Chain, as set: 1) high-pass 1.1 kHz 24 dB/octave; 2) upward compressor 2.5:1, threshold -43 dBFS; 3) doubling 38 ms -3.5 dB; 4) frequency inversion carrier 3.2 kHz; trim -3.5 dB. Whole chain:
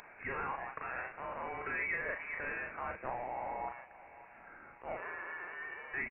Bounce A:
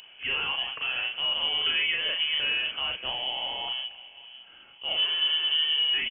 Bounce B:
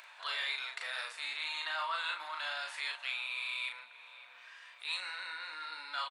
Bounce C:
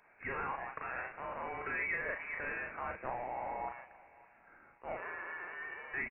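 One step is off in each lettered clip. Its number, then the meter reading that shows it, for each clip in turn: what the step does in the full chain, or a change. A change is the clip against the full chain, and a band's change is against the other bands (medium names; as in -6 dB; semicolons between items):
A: 1, 2 kHz band +7.5 dB; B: 4, momentary loudness spread change -1 LU; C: 2, momentary loudness spread change -9 LU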